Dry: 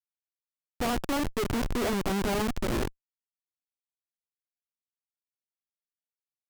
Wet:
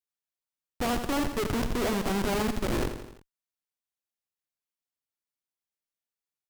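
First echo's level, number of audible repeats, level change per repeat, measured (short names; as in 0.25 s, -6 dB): -9.5 dB, 4, -5.0 dB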